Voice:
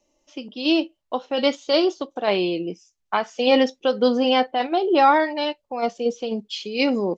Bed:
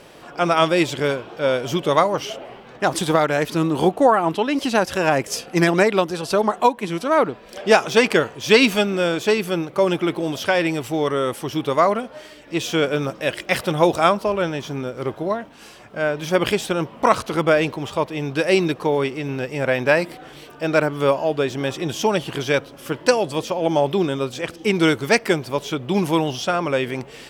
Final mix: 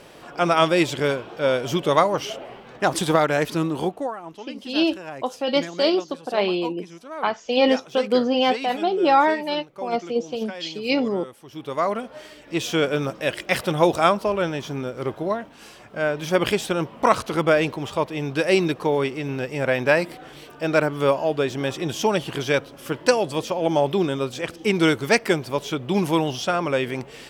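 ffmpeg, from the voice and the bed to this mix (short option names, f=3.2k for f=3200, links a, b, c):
-filter_complex "[0:a]adelay=4100,volume=-1dB[a];[1:a]volume=15dB,afade=t=out:st=3.43:d=0.71:silence=0.149624,afade=t=in:st=11.46:d=0.74:silence=0.158489[b];[a][b]amix=inputs=2:normalize=0"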